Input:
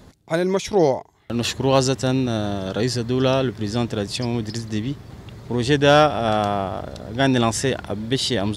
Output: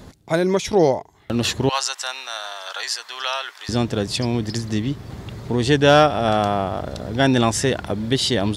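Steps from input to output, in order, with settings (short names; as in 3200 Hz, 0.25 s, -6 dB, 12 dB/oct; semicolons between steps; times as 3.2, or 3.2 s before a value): 1.69–3.69 HPF 920 Hz 24 dB/oct; in parallel at -2.5 dB: compressor, threshold -29 dBFS, peak gain reduction 18 dB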